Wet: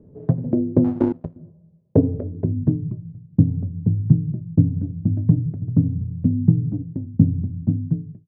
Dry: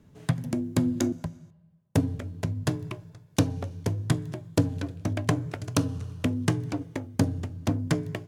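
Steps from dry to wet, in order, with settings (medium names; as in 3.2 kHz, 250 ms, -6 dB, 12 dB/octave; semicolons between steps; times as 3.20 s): fade out at the end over 0.73 s; low-pass sweep 470 Hz -> 190 Hz, 2.23–2.90 s; 0.84–1.36 s: power-law waveshaper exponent 1.4; trim +6 dB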